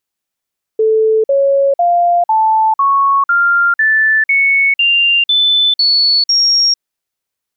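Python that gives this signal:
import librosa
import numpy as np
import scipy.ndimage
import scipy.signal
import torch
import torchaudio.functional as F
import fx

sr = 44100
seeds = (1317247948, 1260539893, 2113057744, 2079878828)

y = fx.stepped_sweep(sr, from_hz=439.0, direction='up', per_octave=3, tones=12, dwell_s=0.45, gap_s=0.05, level_db=-8.0)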